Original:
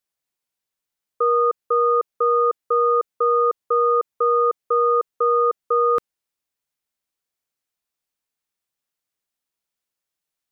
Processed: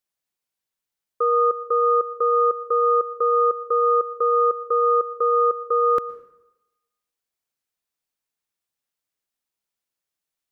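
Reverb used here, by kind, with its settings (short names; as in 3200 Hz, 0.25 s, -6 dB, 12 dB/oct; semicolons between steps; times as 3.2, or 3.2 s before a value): plate-style reverb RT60 0.94 s, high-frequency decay 0.75×, pre-delay 0.1 s, DRR 17 dB; gain -1.5 dB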